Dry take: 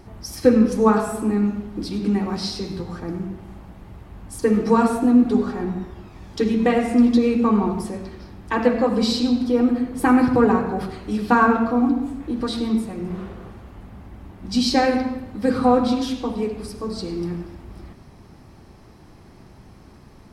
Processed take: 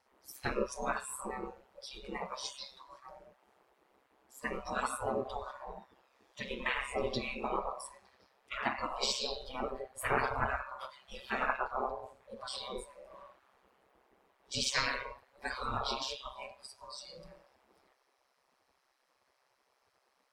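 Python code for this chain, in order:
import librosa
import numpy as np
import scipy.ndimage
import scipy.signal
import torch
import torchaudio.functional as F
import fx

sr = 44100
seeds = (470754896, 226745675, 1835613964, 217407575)

y = x * np.sin(2.0 * np.pi * 66.0 * np.arange(len(x)) / sr)
y = fx.spec_gate(y, sr, threshold_db=-15, keep='weak')
y = fx.noise_reduce_blind(y, sr, reduce_db=15)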